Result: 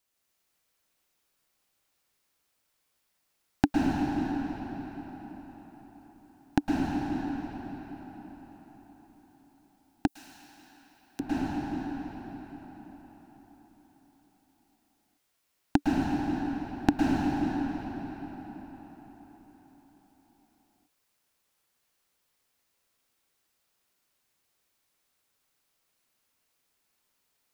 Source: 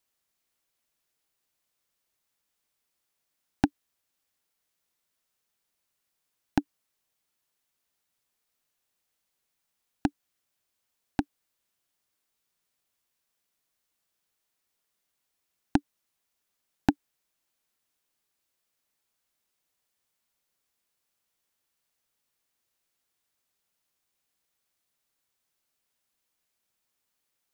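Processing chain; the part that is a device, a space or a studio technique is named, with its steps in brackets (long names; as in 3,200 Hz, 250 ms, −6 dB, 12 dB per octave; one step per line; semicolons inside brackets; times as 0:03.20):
cathedral (convolution reverb RT60 5.1 s, pre-delay 103 ms, DRR −5 dB)
0:10.07–0:11.20: first-order pre-emphasis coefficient 0.97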